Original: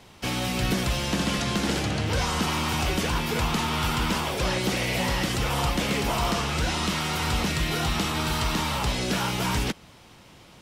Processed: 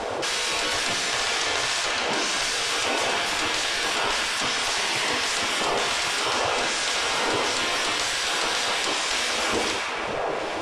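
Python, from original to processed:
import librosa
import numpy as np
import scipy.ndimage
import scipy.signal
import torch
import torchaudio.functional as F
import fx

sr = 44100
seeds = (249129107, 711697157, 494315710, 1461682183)

y = fx.dmg_wind(x, sr, seeds[0], corner_hz=220.0, level_db=-24.0)
y = fx.spec_gate(y, sr, threshold_db=-15, keep='weak')
y = scipy.signal.sosfilt(scipy.signal.butter(4, 9300.0, 'lowpass', fs=sr, output='sos'), y)
y = fx.echo_wet_bandpass(y, sr, ms=176, feedback_pct=79, hz=1400.0, wet_db=-14.5)
y = fx.rev_gated(y, sr, seeds[1], gate_ms=230, shape='falling', drr_db=3.5)
y = fx.env_flatten(y, sr, amount_pct=70)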